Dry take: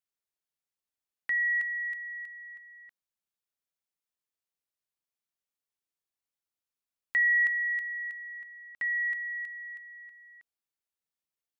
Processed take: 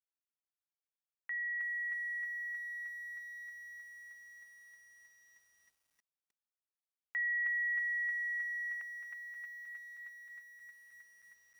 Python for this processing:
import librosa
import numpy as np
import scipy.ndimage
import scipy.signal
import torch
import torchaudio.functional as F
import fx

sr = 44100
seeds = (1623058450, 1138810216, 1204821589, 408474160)

y = fx.bandpass_edges(x, sr, low_hz=730.0, high_hz=2000.0)
y = fx.echo_crushed(y, sr, ms=313, feedback_pct=80, bits=10, wet_db=-6.0)
y = F.gain(torch.from_numpy(y), -7.5).numpy()